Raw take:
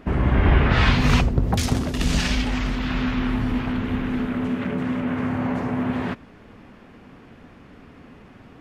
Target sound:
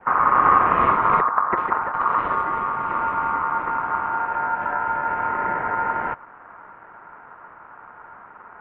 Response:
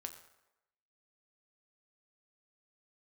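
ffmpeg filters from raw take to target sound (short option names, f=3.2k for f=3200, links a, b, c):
-af "aeval=exprs='val(0)*sin(2*PI*1500*n/s)':c=same,highpass=f=460:t=q:w=0.5412,highpass=f=460:t=q:w=1.307,lowpass=f=2.2k:t=q:w=0.5176,lowpass=f=2.2k:t=q:w=0.7071,lowpass=f=2.2k:t=q:w=1.932,afreqshift=-340,adynamicequalizer=threshold=0.0316:dfrequency=1300:dqfactor=1.5:tfrequency=1300:tqfactor=1.5:attack=5:release=100:ratio=0.375:range=2.5:mode=cutabove:tftype=bell,volume=6dB"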